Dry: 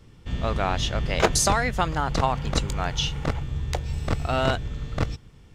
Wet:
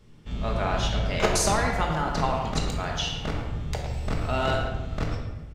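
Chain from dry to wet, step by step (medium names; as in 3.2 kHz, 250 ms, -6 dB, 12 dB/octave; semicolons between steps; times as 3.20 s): speakerphone echo 110 ms, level -7 dB; simulated room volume 630 m³, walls mixed, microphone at 1.4 m; trim -5 dB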